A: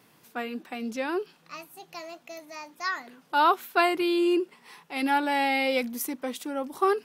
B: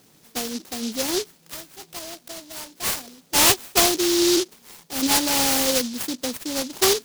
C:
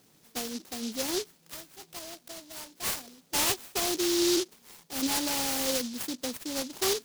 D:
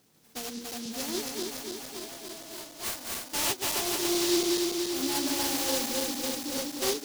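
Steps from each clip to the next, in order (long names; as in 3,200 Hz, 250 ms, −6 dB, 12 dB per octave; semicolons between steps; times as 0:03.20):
short delay modulated by noise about 4,700 Hz, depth 0.25 ms; level +4.5 dB
brickwall limiter −13 dBFS, peak gain reduction 7.5 dB; level −6.5 dB
feedback delay that plays each chunk backwards 143 ms, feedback 81%, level −2 dB; level −3.5 dB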